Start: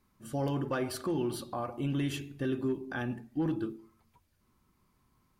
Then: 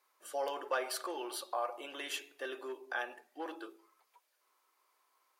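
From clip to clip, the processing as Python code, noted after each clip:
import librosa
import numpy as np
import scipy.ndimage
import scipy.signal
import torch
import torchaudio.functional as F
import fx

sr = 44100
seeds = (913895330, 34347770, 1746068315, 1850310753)

y = scipy.signal.sosfilt(scipy.signal.cheby2(4, 50, 190.0, 'highpass', fs=sr, output='sos'), x)
y = F.gain(torch.from_numpy(y), 1.5).numpy()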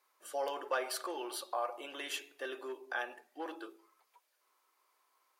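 y = x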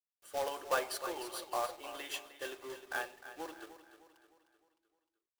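y = fx.quant_companded(x, sr, bits=4)
y = fx.echo_feedback(y, sr, ms=306, feedback_pct=48, wet_db=-9.0)
y = fx.upward_expand(y, sr, threshold_db=-48.0, expansion=1.5)
y = F.gain(torch.from_numpy(y), 2.0).numpy()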